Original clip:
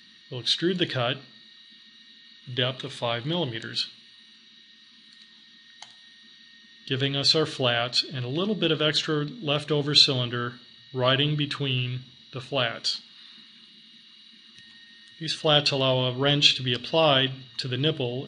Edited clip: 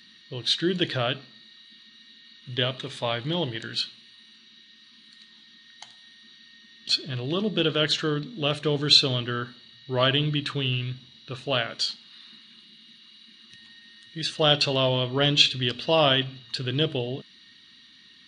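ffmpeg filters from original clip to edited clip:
ffmpeg -i in.wav -filter_complex "[0:a]asplit=2[link_01][link_02];[link_01]atrim=end=6.892[link_03];[link_02]atrim=start=7.938[link_04];[link_03][link_04]acrossfade=duration=0.004:curve1=hsin:curve2=hsin" out.wav

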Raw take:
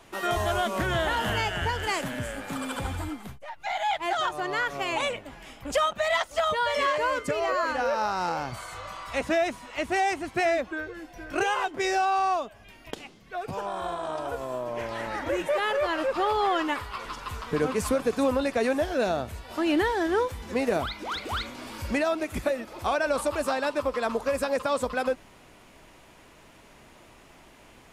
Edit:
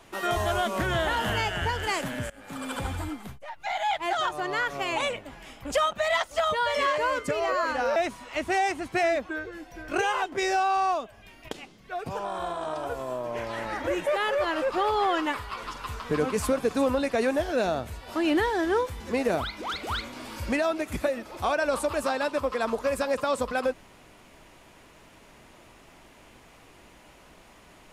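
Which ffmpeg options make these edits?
ffmpeg -i in.wav -filter_complex "[0:a]asplit=3[link_01][link_02][link_03];[link_01]atrim=end=2.3,asetpts=PTS-STARTPTS,afade=type=out:start_time=2.296:duration=0.004:curve=hsin:silence=0.0749894[link_04];[link_02]atrim=start=2.3:end=7.962,asetpts=PTS-STARTPTS,afade=type=in:duration=0.44:silence=0.0749894[link_05];[link_03]atrim=start=9.378[link_06];[link_04][link_05]concat=n=2:v=0:a=1[link_07];[link_07][link_06]acrossfade=duration=0.004:curve1=hsin:curve2=hsin" out.wav

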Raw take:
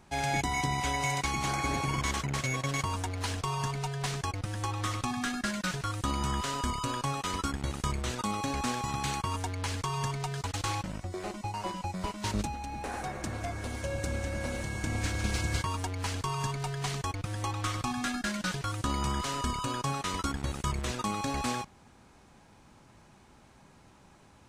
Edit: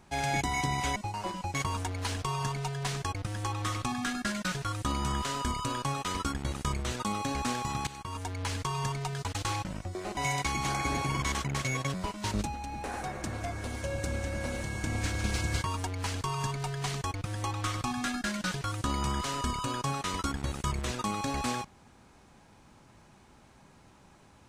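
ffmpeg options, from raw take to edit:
ffmpeg -i in.wav -filter_complex "[0:a]asplit=6[link_01][link_02][link_03][link_04][link_05][link_06];[link_01]atrim=end=0.962[link_07];[link_02]atrim=start=11.358:end=11.942[link_08];[link_03]atrim=start=2.728:end=9.06,asetpts=PTS-STARTPTS,afade=type=out:start_time=6.328:duration=0.004:curve=hsin:silence=0.16788[link_09];[link_04]atrim=start=9.06:end=11.362,asetpts=PTS-STARTPTS,afade=type=in:duration=0.55:silence=0.16788[link_10];[link_05]atrim=start=0.958:end=2.732[link_11];[link_06]atrim=start=11.938[link_12];[link_07][link_08]acrossfade=duration=0.004:curve1=hsin:curve2=hsin[link_13];[link_09][link_10]concat=n=2:v=0:a=1[link_14];[link_13][link_14]acrossfade=duration=0.004:curve1=hsin:curve2=hsin[link_15];[link_15][link_11]acrossfade=duration=0.004:curve1=hsin:curve2=hsin[link_16];[link_16][link_12]acrossfade=duration=0.004:curve1=hsin:curve2=hsin" out.wav

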